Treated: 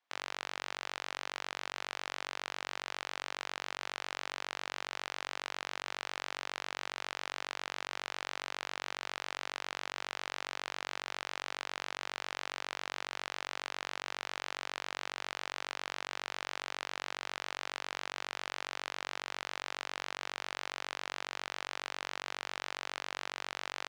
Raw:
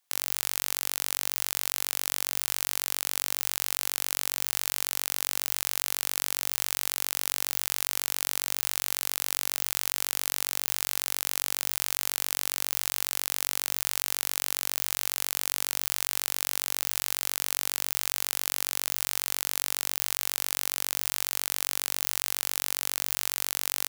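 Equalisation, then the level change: tape spacing loss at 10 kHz 34 dB; bass shelf 390 Hz -10 dB; +5.0 dB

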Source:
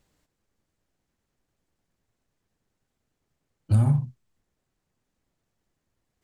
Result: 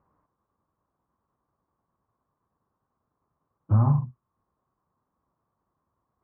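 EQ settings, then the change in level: high-pass 57 Hz; resonant low-pass 1.1 kHz, resonance Q 6.6; distance through air 460 m; 0.0 dB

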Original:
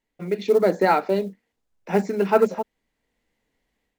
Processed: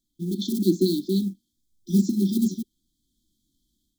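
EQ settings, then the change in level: treble shelf 4.2 kHz +6 dB; dynamic bell 360 Hz, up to +5 dB, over -31 dBFS, Q 0.77; brick-wall FIR band-stop 370–3100 Hz; +3.5 dB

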